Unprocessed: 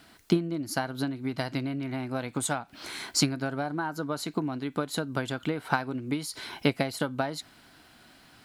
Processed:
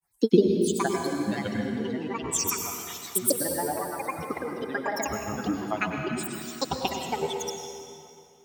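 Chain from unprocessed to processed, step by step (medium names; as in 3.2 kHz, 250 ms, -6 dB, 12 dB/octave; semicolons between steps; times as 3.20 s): expander on every frequency bin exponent 2; high-pass 160 Hz; granulator, pitch spread up and down by 12 st; LFO notch sine 2.7 Hz 510–3000 Hz; in parallel at -0.5 dB: compression, threshold -47 dBFS, peak gain reduction 24 dB; on the sum: reverberation RT60 2.5 s, pre-delay 89 ms, DRR 2.5 dB; trim +6.5 dB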